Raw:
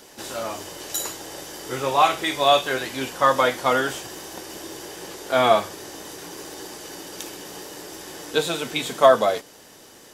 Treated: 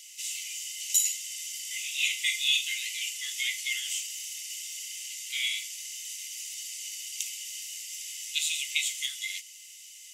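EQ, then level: rippled Chebyshev high-pass 2 kHz, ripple 9 dB; +6.0 dB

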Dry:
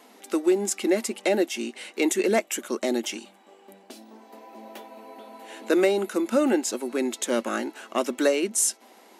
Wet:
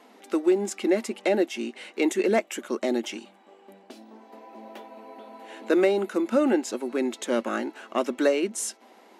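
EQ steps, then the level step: treble shelf 5.5 kHz -12 dB; 0.0 dB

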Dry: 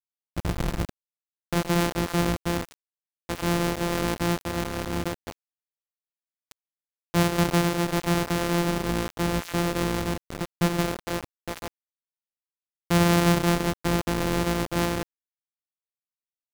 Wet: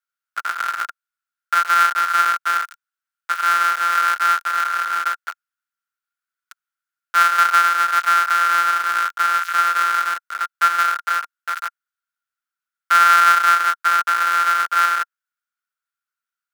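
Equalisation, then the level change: resonant high-pass 1.4 kHz, resonance Q 15; +3.0 dB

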